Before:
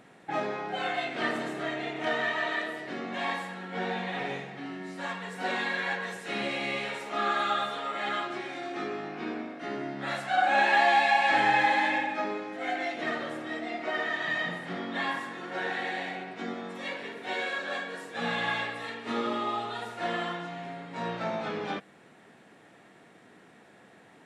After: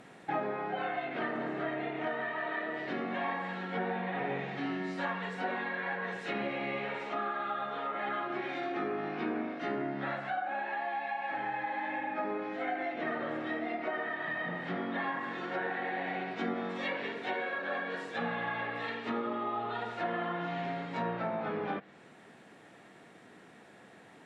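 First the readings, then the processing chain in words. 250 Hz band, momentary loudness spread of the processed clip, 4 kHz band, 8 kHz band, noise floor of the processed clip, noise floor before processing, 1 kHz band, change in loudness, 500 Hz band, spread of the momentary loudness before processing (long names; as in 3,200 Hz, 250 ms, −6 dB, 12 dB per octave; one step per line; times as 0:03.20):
−1.0 dB, 2 LU, −10.5 dB, below −15 dB, −56 dBFS, −56 dBFS, −5.5 dB, −5.0 dB, −2.0 dB, 14 LU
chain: downward compressor, threshold −29 dBFS, peak gain reduction 10.5 dB
treble cut that deepens with the level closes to 1,900 Hz, closed at −31 dBFS
speech leveller 0.5 s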